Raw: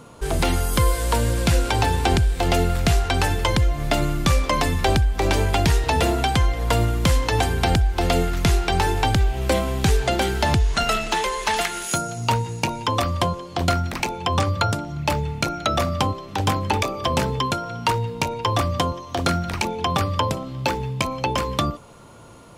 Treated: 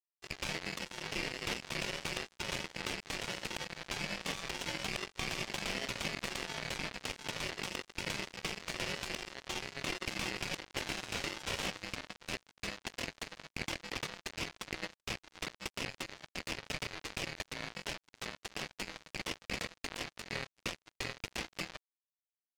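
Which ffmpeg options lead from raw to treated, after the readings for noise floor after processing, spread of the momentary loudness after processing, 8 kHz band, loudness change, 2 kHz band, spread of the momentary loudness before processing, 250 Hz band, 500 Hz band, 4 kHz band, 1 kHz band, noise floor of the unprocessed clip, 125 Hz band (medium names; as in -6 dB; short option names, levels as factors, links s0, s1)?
under -85 dBFS, 5 LU, -13.5 dB, -17.5 dB, -11.5 dB, 5 LU, -20.0 dB, -20.5 dB, -12.0 dB, -23.0 dB, -38 dBFS, -27.0 dB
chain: -filter_complex "[0:a]lowpass=1800,afftdn=nr=18:nf=-34,bandreject=f=60:t=h:w=6,bandreject=f=120:t=h:w=6,afftfilt=real='re*lt(hypot(re,im),0.112)':imag='im*lt(hypot(re,im),0.112)':win_size=1024:overlap=0.75,equalizer=f=260:w=0.42:g=-12.5,asplit=2[s0][s1];[s1]highpass=f=720:p=1,volume=10,asoftclip=type=tanh:threshold=0.1[s2];[s0][s2]amix=inputs=2:normalize=0,lowpass=f=1200:p=1,volume=0.501,aeval=exprs='val(0)*sin(2*PI*1200*n/s)':c=same,asplit=2[s3][s4];[s4]adelay=740,lowpass=f=940:p=1,volume=0.501,asplit=2[s5][s6];[s6]adelay=740,lowpass=f=940:p=1,volume=0.42,asplit=2[s7][s8];[s8]adelay=740,lowpass=f=940:p=1,volume=0.42,asplit=2[s9][s10];[s10]adelay=740,lowpass=f=940:p=1,volume=0.42,asplit=2[s11][s12];[s12]adelay=740,lowpass=f=940:p=1,volume=0.42[s13];[s5][s7][s9][s11][s13]amix=inputs=5:normalize=0[s14];[s3][s14]amix=inputs=2:normalize=0,acrusher=bits=4:mix=0:aa=0.5,volume=1.19"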